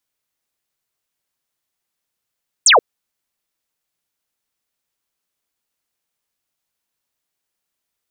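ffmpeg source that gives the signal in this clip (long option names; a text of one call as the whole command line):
ffmpeg -f lavfi -i "aevalsrc='0.473*clip(t/0.002,0,1)*clip((0.13-t)/0.002,0,1)*sin(2*PI*9100*0.13/log(400/9100)*(exp(log(400/9100)*t/0.13)-1))':duration=0.13:sample_rate=44100" out.wav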